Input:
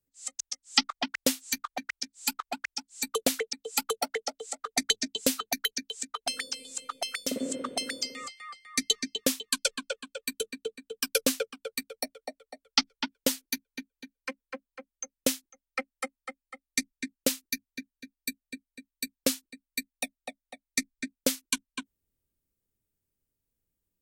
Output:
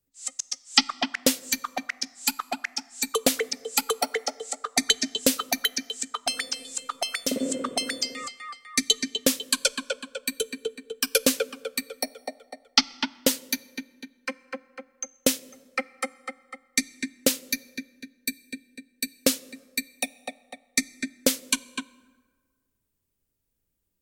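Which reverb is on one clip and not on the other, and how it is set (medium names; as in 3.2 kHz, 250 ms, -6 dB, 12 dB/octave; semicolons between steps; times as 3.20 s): plate-style reverb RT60 1.6 s, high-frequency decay 0.6×, DRR 19.5 dB; trim +4.5 dB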